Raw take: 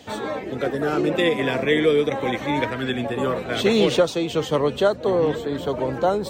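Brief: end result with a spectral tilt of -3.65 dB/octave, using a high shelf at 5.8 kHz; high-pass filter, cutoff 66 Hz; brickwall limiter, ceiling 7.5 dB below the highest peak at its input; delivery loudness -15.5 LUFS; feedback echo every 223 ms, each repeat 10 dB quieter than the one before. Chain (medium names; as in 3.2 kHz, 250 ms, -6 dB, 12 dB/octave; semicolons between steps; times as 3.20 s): high-pass 66 Hz; treble shelf 5.8 kHz +7.5 dB; peak limiter -14.5 dBFS; feedback delay 223 ms, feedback 32%, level -10 dB; trim +8.5 dB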